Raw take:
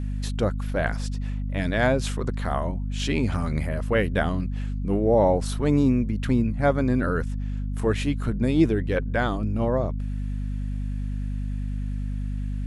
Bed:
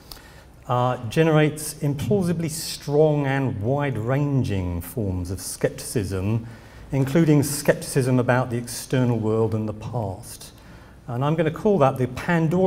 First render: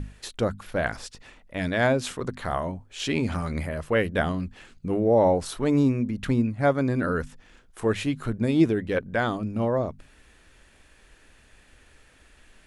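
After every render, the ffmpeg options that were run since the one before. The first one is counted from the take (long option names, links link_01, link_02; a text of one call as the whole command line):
ffmpeg -i in.wav -af "bandreject=frequency=50:width_type=h:width=6,bandreject=frequency=100:width_type=h:width=6,bandreject=frequency=150:width_type=h:width=6,bandreject=frequency=200:width_type=h:width=6,bandreject=frequency=250:width_type=h:width=6" out.wav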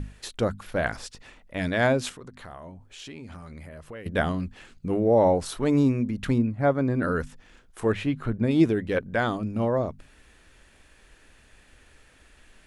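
ffmpeg -i in.wav -filter_complex "[0:a]asettb=1/sr,asplit=3[link_01][link_02][link_03];[link_01]atrim=end=2.094[link_04];[link_02]atrim=start=2.09:end=4.06,asetpts=PTS-STARTPTS,afade=type=in:duration=0.004:curve=qsin,afade=type=out:start_time=1.966:duration=0.004:curve=qsin,acompressor=threshold=-43dB:ratio=3:attack=3.2:release=140:knee=1:detection=peak[link_05];[link_03]atrim=start=4.056[link_06];[link_04][link_05]acrossfade=duration=0.004:curve1=hsin:curve2=qsin[link_07];[link_07][link_06]acrossfade=duration=0.004:curve1=qsin:curve2=hsin,asettb=1/sr,asplit=3[link_08][link_09][link_10];[link_08]atrim=end=6.384[link_11];[link_09]atrim=start=6.38:end=7.02,asetpts=PTS-STARTPTS,afade=type=in:duration=0.004:curve=qsin,afade=type=out:start_time=0.636:duration=0.004:curve=qsin,highshelf=frequency=2600:gain=-11[link_12];[link_10]atrim=start=7.016[link_13];[link_11][link_12]acrossfade=duration=0.004:curve1=hsin:curve2=qsin[link_14];[link_14][link_13]acrossfade=duration=0.004:curve1=qsin:curve2=hsin,asettb=1/sr,asplit=3[link_15][link_16][link_17];[link_15]atrim=end=7.924[link_18];[link_16]atrim=start=7.92:end=8.51,asetpts=PTS-STARTPTS,afade=type=in:duration=0.004:curve=qsin,afade=type=out:start_time=0.586:duration=0.004:curve=qsin,bass=frequency=250:gain=1,treble=frequency=4000:gain=-12[link_19];[link_17]atrim=start=8.506[link_20];[link_18][link_19]acrossfade=duration=0.004:curve1=hsin:curve2=qsin[link_21];[link_21][link_20]acrossfade=duration=0.004:curve1=qsin:curve2=hsin" out.wav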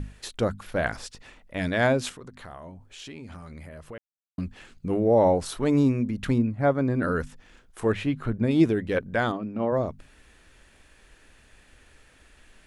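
ffmpeg -i in.wav -filter_complex "[0:a]asplit=3[link_01][link_02][link_03];[link_01]afade=type=out:start_time=9.31:duration=0.02[link_04];[link_02]highpass=190,lowpass=2600,afade=type=in:start_time=9.31:duration=0.02,afade=type=out:start_time=9.71:duration=0.02[link_05];[link_03]afade=type=in:start_time=9.71:duration=0.02[link_06];[link_04][link_05][link_06]amix=inputs=3:normalize=0,asplit=3[link_07][link_08][link_09];[link_07]atrim=end=3.98,asetpts=PTS-STARTPTS,afade=type=out:start_time=3.976:duration=0.004:curve=hsin[link_10];[link_08]atrim=start=3.98:end=4.38,asetpts=PTS-STARTPTS,volume=0[link_11];[link_09]atrim=start=4.38,asetpts=PTS-STARTPTS,afade=type=in:duration=0.004:curve=hsin[link_12];[link_10][link_11][link_12]concat=n=3:v=0:a=1" out.wav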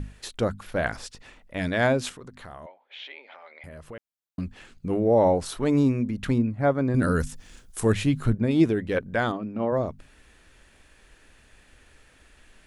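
ffmpeg -i in.wav -filter_complex "[0:a]asettb=1/sr,asplit=3[link_01][link_02][link_03];[link_01]atrim=end=2.664[link_04];[link_02]atrim=start=2.66:end=3.64,asetpts=PTS-STARTPTS,afade=type=in:duration=0.004:curve=qsin,afade=type=out:start_time=0.976:duration=0.004:curve=qsin,highpass=frequency=500:width=0.5412,highpass=frequency=500:width=1.3066,equalizer=frequency=570:width_type=q:width=4:gain=4,equalizer=frequency=830:width_type=q:width=4:gain=4,equalizer=frequency=1200:width_type=q:width=4:gain=-3,equalizer=frequency=2100:width_type=q:width=4:gain=9,equalizer=frequency=3500:width_type=q:width=4:gain=7,lowpass=frequency=3700:width=0.5412,lowpass=frequency=3700:width=1.3066[link_05];[link_03]atrim=start=3.636[link_06];[link_04][link_05]acrossfade=duration=0.004:curve1=hsin:curve2=qsin[link_07];[link_07][link_06]acrossfade=duration=0.004:curve1=qsin:curve2=hsin,asettb=1/sr,asplit=3[link_08][link_09][link_10];[link_08]atrim=end=6.944[link_11];[link_09]atrim=start=6.94:end=8.35,asetpts=PTS-STARTPTS,afade=type=in:duration=0.004:curve=qsin,afade=type=out:start_time=1.406:duration=0.004:curve=qsin,bass=frequency=250:gain=7,treble=frequency=4000:gain=14[link_12];[link_10]atrim=start=8.346[link_13];[link_11][link_12]acrossfade=duration=0.004:curve1=hsin:curve2=qsin[link_14];[link_14][link_13]acrossfade=duration=0.004:curve1=qsin:curve2=hsin" out.wav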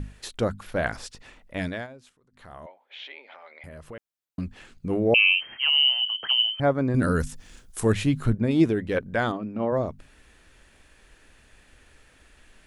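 ffmpeg -i in.wav -filter_complex "[0:a]asettb=1/sr,asplit=3[link_01][link_02][link_03];[link_01]atrim=end=5.144[link_04];[link_02]atrim=start=5.14:end=6.6,asetpts=PTS-STARTPTS,afade=type=in:duration=0.004:curve=qsin,afade=type=out:start_time=1.456:duration=0.004:curve=qsin,lowpass=frequency=2700:width_type=q:width=0.5098,lowpass=frequency=2700:width_type=q:width=0.6013,lowpass=frequency=2700:width_type=q:width=0.9,lowpass=frequency=2700:width_type=q:width=2.563,afreqshift=-3200[link_05];[link_03]atrim=start=6.596[link_06];[link_04][link_05]acrossfade=duration=0.004:curve1=hsin:curve2=qsin[link_07];[link_07][link_06]acrossfade=duration=0.004:curve1=qsin:curve2=hsin,asplit=3[link_08][link_09][link_10];[link_08]atrim=end=1.87,asetpts=PTS-STARTPTS,afade=type=out:start_time=1.59:duration=0.28:silence=0.0707946[link_11];[link_09]atrim=start=1.87:end=2.3,asetpts=PTS-STARTPTS,volume=-23dB[link_12];[link_10]atrim=start=2.3,asetpts=PTS-STARTPTS,afade=type=in:duration=0.28:silence=0.0707946[link_13];[link_11][link_12][link_13]concat=n=3:v=0:a=1" out.wav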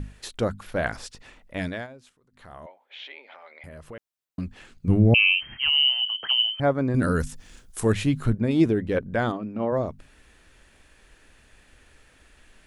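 ffmpeg -i in.wav -filter_complex "[0:a]asplit=3[link_01][link_02][link_03];[link_01]afade=type=out:start_time=4.87:duration=0.02[link_04];[link_02]asubboost=boost=9.5:cutoff=160,afade=type=in:start_time=4.87:duration=0.02,afade=type=out:start_time=5.98:duration=0.02[link_05];[link_03]afade=type=in:start_time=5.98:duration=0.02[link_06];[link_04][link_05][link_06]amix=inputs=3:normalize=0,asettb=1/sr,asplit=3[link_07][link_08][link_09];[link_07]atrim=end=8.654[link_10];[link_08]atrim=start=8.65:end=9.3,asetpts=PTS-STARTPTS,afade=type=in:duration=0.004:curve=qsin,afade=type=out:start_time=0.646:duration=0.004:curve=qsin,tiltshelf=frequency=720:gain=3[link_11];[link_09]atrim=start=9.296[link_12];[link_10][link_11]acrossfade=duration=0.004:curve1=hsin:curve2=qsin[link_13];[link_13][link_12]acrossfade=duration=0.004:curve1=qsin:curve2=hsin" out.wav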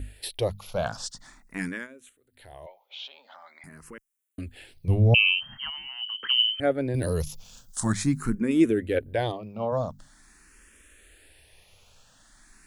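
ffmpeg -i in.wav -filter_complex "[0:a]crystalizer=i=2:c=0,asplit=2[link_01][link_02];[link_02]afreqshift=0.45[link_03];[link_01][link_03]amix=inputs=2:normalize=1" out.wav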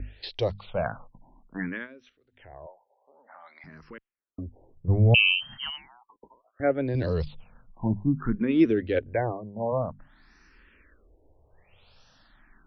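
ffmpeg -i in.wav -filter_complex "[0:a]acrossover=split=390|5200[link_01][link_02][link_03];[link_03]asoftclip=type=tanh:threshold=-26dB[link_04];[link_01][link_02][link_04]amix=inputs=3:normalize=0,afftfilt=real='re*lt(b*sr/1024,990*pow(6100/990,0.5+0.5*sin(2*PI*0.6*pts/sr)))':imag='im*lt(b*sr/1024,990*pow(6100/990,0.5+0.5*sin(2*PI*0.6*pts/sr)))':win_size=1024:overlap=0.75" out.wav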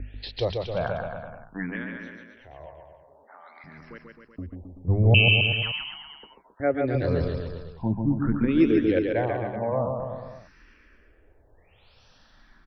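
ffmpeg -i in.wav -af "aecho=1:1:140|266|379.4|481.5|573.3:0.631|0.398|0.251|0.158|0.1" out.wav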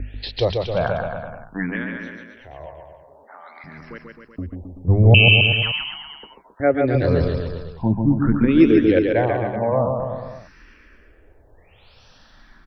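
ffmpeg -i in.wav -af "volume=6.5dB,alimiter=limit=-1dB:level=0:latency=1" out.wav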